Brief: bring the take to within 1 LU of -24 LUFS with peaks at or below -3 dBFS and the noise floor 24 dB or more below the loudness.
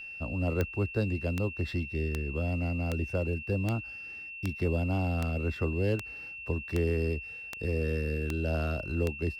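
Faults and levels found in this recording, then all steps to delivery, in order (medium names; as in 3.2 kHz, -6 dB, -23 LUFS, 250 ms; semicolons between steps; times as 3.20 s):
clicks found 12; steady tone 2.7 kHz; tone level -40 dBFS; loudness -32.0 LUFS; peak level -13.0 dBFS; loudness target -24.0 LUFS
-> de-click; band-stop 2.7 kHz, Q 30; trim +8 dB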